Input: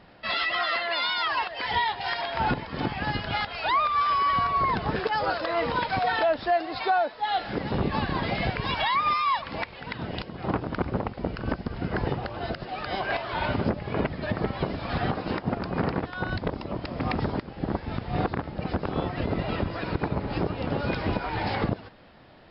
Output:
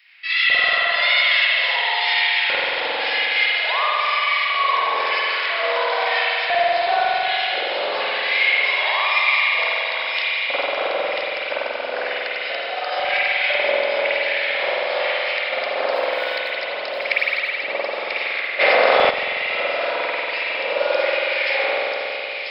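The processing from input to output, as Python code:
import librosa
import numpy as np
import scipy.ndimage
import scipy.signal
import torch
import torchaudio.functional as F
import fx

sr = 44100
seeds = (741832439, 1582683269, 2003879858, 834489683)

p1 = scipy.signal.sosfilt(scipy.signal.butter(2, 130.0, 'highpass', fs=sr, output='sos'), x)
p2 = fx.tilt_eq(p1, sr, slope=4.5)
p3 = fx.rider(p2, sr, range_db=4, speed_s=0.5)
p4 = p2 + (p3 * librosa.db_to_amplitude(1.5))
p5 = fx.quant_companded(p4, sr, bits=6, at=(15.93, 16.57))
p6 = fx.filter_lfo_highpass(p5, sr, shape='square', hz=1.0, low_hz=550.0, high_hz=2200.0, q=5.2)
p7 = p6 + fx.echo_wet_highpass(p6, sr, ms=991, feedback_pct=33, hz=2900.0, wet_db=-3.0, dry=0)
p8 = fx.rev_spring(p7, sr, rt60_s=3.2, pass_ms=(46,), chirp_ms=40, drr_db=-8.5)
p9 = fx.env_flatten(p8, sr, amount_pct=100, at=(18.59, 19.09), fade=0.02)
y = p9 * librosa.db_to_amplitude(-13.0)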